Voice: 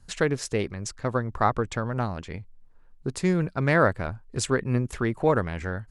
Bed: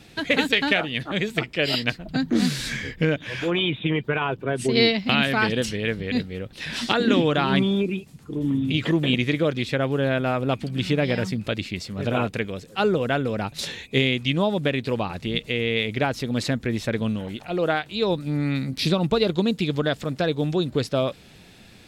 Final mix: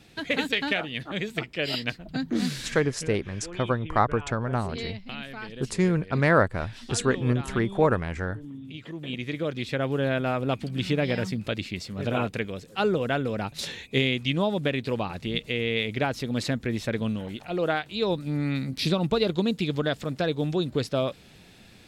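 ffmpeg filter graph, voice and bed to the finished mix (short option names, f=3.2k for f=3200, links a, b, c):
-filter_complex "[0:a]adelay=2550,volume=0.5dB[a];[1:a]volume=8.5dB,afade=t=out:st=2.53:d=0.47:silence=0.266073,afade=t=in:st=8.93:d=0.98:silence=0.199526[b];[a][b]amix=inputs=2:normalize=0"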